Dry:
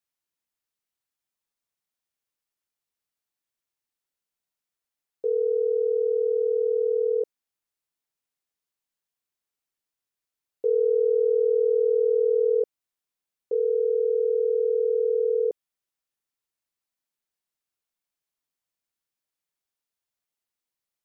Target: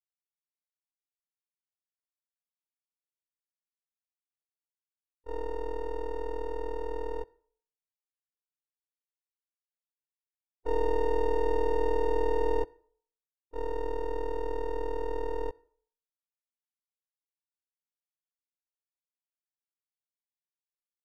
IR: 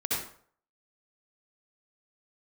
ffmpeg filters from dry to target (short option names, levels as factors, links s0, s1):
-filter_complex "[0:a]aeval=exprs='max(val(0),0)':c=same,agate=range=0.00891:threshold=0.0631:ratio=16:detection=peak,asplit=3[s0][s1][s2];[s1]asetrate=29433,aresample=44100,atempo=1.49831,volume=0.2[s3];[s2]asetrate=35002,aresample=44100,atempo=1.25992,volume=0.158[s4];[s0][s3][s4]amix=inputs=3:normalize=0,asplit=2[s5][s6];[1:a]atrim=start_sample=2205,lowshelf=f=360:g=-6[s7];[s6][s7]afir=irnorm=-1:irlink=0,volume=0.0316[s8];[s5][s8]amix=inputs=2:normalize=0,volume=0.794"